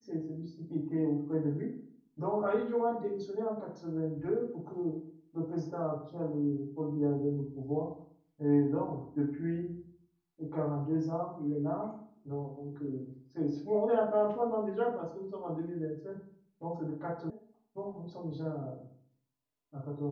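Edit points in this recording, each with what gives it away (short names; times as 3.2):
17.3 sound cut off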